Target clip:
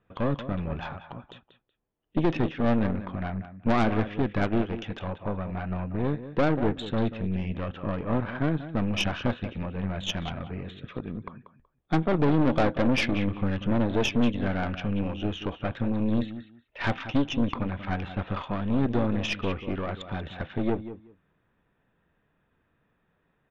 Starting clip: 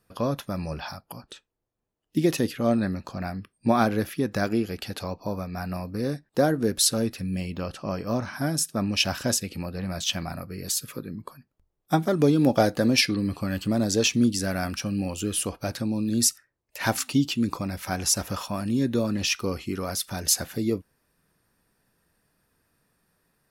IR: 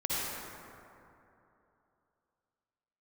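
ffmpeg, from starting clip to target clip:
-af "aemphasis=mode=reproduction:type=50fm,aresample=8000,asoftclip=type=tanh:threshold=0.126,aresample=44100,aecho=1:1:187|374:0.251|0.0427,aeval=exprs='0.178*(cos(1*acos(clip(val(0)/0.178,-1,1)))-cos(1*PI/2))+0.0398*(cos(4*acos(clip(val(0)/0.178,-1,1)))-cos(4*PI/2))':c=same"

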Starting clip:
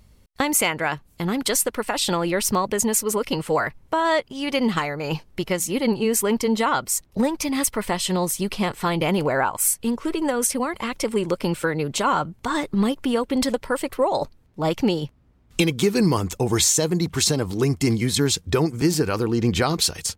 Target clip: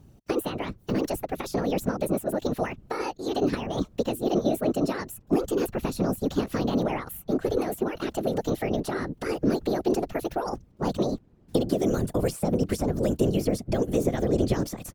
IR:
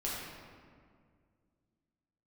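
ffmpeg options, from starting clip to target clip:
-filter_complex "[0:a]acrossover=split=370|1800[s0][s1][s2];[s0]acompressor=threshold=0.0794:ratio=4[s3];[s1]acompressor=threshold=0.02:ratio=4[s4];[s2]acompressor=threshold=0.0178:ratio=4[s5];[s3][s4][s5]amix=inputs=3:normalize=0,afftfilt=real='hypot(re,im)*cos(2*PI*random(0))':imag='hypot(re,im)*sin(2*PI*random(1))':win_size=512:overlap=0.75,acrossover=split=650|6800[s6][s7][s8];[s6]acontrast=77[s9];[s9][s7][s8]amix=inputs=3:normalize=0,asetrate=59535,aresample=44100"

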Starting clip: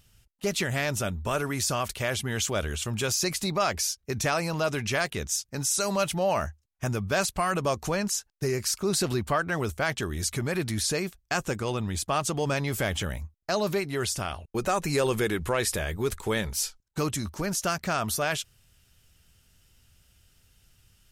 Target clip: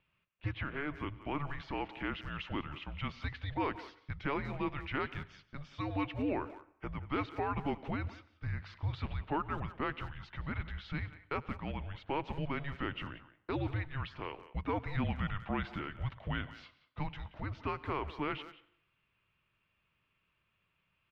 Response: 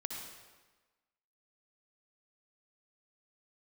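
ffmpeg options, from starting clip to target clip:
-filter_complex "[0:a]asettb=1/sr,asplit=3[s0][s1][s2];[s0]atrim=end=0.534[s3];[s1]atrim=start=0.53:end=1.01,asetpts=PTS-STARTPTS,afade=t=in:d=0.004:c=qsin,afade=t=out:st=0.476:d=0.004:c=qsin,asplit=2[s4][s5];[s5]highpass=f=720:p=1,volume=2.82,asoftclip=type=tanh:threshold=0.188[s6];[s4][s6]amix=inputs=2:normalize=0,lowpass=f=1400:p=1,volume=0.501[s7];[s2]atrim=start=1.006[s8];[s3][s7]acrossfade=d=0.004:c1=hsin:c2=qsin[s9];[s9][s8]acrossfade=d=0.004:c1=qsin:c2=hsin,asplit=2[s10][s11];[1:a]atrim=start_sample=2205,asetrate=83790,aresample=44100,adelay=97[s12];[s11][s12]afir=irnorm=-1:irlink=0,volume=0.211[s13];[s10][s13]amix=inputs=2:normalize=0,highpass=f=170:t=q:w=0.5412,highpass=f=170:t=q:w=1.307,lowpass=f=3400:t=q:w=0.5176,lowpass=f=3400:t=q:w=0.7071,lowpass=f=3400:t=q:w=1.932,afreqshift=-290,asplit=2[s14][s15];[s15]adelay=180,highpass=300,lowpass=3400,asoftclip=type=hard:threshold=0.075,volume=0.2[s16];[s14][s16]amix=inputs=2:normalize=0,volume=0.398"

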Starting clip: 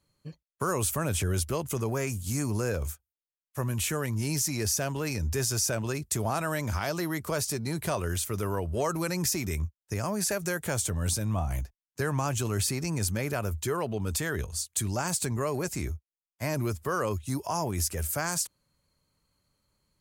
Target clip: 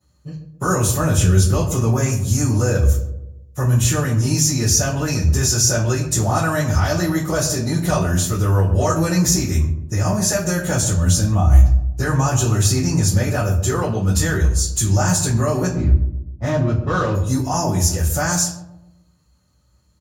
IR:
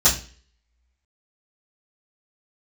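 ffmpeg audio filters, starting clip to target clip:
-filter_complex "[0:a]asplit=3[s0][s1][s2];[s0]afade=t=out:st=15.65:d=0.02[s3];[s1]adynamicsmooth=sensitivity=4.5:basefreq=660,afade=t=in:st=15.65:d=0.02,afade=t=out:st=17.13:d=0.02[s4];[s2]afade=t=in:st=17.13:d=0.02[s5];[s3][s4][s5]amix=inputs=3:normalize=0,asplit=2[s6][s7];[s7]adelay=131,lowpass=f=810:p=1,volume=0.355,asplit=2[s8][s9];[s9]adelay=131,lowpass=f=810:p=1,volume=0.5,asplit=2[s10][s11];[s11]adelay=131,lowpass=f=810:p=1,volume=0.5,asplit=2[s12][s13];[s13]adelay=131,lowpass=f=810:p=1,volume=0.5,asplit=2[s14][s15];[s15]adelay=131,lowpass=f=810:p=1,volume=0.5,asplit=2[s16][s17];[s17]adelay=131,lowpass=f=810:p=1,volume=0.5[s18];[s6][s8][s10][s12][s14][s16][s18]amix=inputs=7:normalize=0[s19];[1:a]atrim=start_sample=2205,afade=t=out:st=0.24:d=0.01,atrim=end_sample=11025[s20];[s19][s20]afir=irnorm=-1:irlink=0,volume=0.355"

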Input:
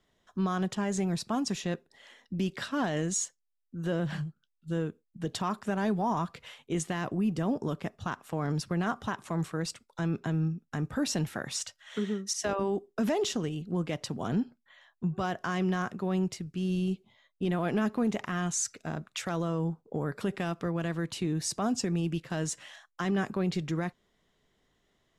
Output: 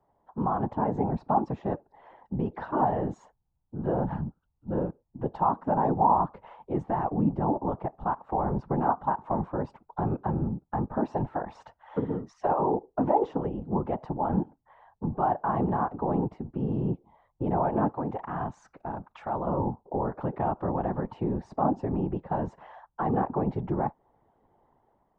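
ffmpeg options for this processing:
-filter_complex "[0:a]asettb=1/sr,asplit=3[s0][s1][s2];[s0]atrim=end=17.904[s3];[s1]atrim=start=17.9:end=19.47,asetpts=PTS-STARTPTS,afade=t=in:d=0.004:c=qsin,afade=t=out:st=1.566:d=0.004:c=qsin,equalizer=f=320:w=0.32:g=-6.5[s4];[s2]atrim=start=19.466[s5];[s3][s4]acrossfade=d=0.004:c1=hsin:c2=qsin[s6];[s6][s5]acrossfade=d=0.004:c1=qsin:c2=hsin,afftfilt=real='hypot(re,im)*cos(2*PI*random(0))':imag='hypot(re,im)*sin(2*PI*random(1))':win_size=512:overlap=0.75,dynaudnorm=f=190:g=5:m=1.78,lowpass=f=870:t=q:w=5,asplit=2[s7][s8];[s8]acompressor=threshold=0.01:ratio=6,volume=0.794[s9];[s7][s9]amix=inputs=2:normalize=0"

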